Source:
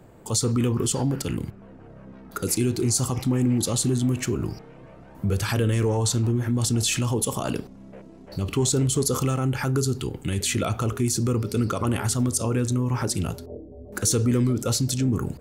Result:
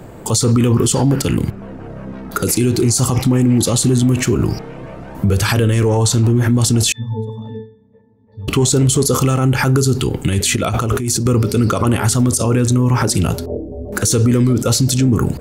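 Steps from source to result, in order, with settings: 6.92–8.48 s: pitch-class resonator A, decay 0.55 s; 10.56–11.26 s: compressor with a negative ratio -31 dBFS, ratio -1; loudness maximiser +20 dB; trim -5.5 dB

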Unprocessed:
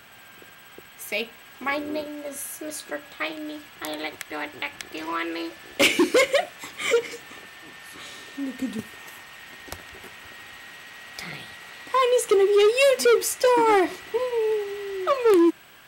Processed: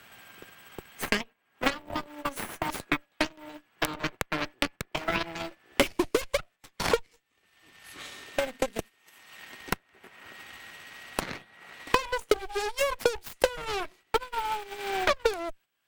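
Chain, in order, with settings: gate -37 dBFS, range -10 dB; transient shaper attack +8 dB, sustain -6 dB; Chebyshev shaper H 3 -9 dB, 8 -25 dB, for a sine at -4.5 dBFS; three bands compressed up and down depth 100%

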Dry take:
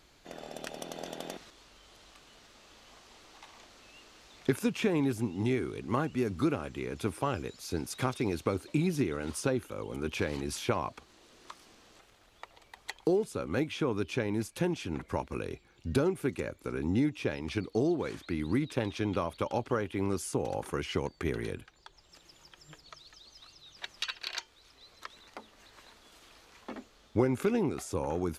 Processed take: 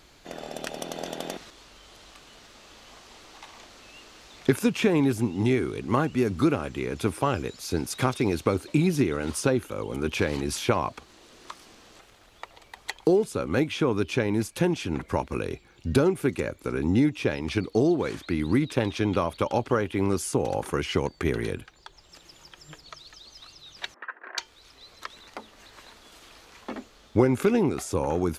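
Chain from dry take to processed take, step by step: 23.94–24.38 s: Chebyshev band-pass 250–1800 Hz, order 4; trim +6.5 dB

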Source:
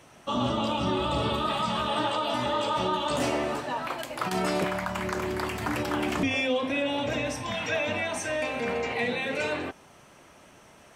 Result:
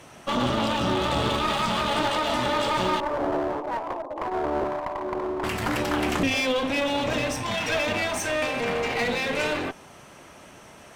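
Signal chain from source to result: 3.00–5.44 s: Chebyshev band-pass 290–1100 Hz, order 4; one-sided clip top -36 dBFS; trim +6 dB

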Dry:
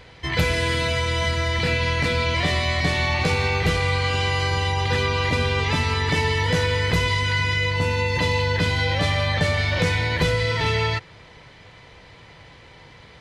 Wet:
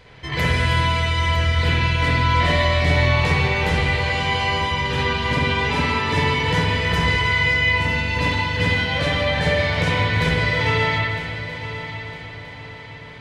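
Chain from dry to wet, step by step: multi-head delay 319 ms, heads first and third, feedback 57%, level -13.5 dB; spring tank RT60 1.2 s, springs 49/56 ms, chirp 50 ms, DRR -5 dB; trim -3.5 dB

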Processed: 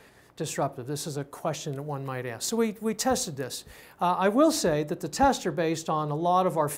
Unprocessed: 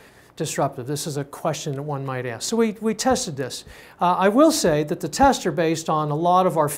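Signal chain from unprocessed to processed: 1.72–4.11 s: treble shelf 11 kHz +12 dB; trim -6 dB

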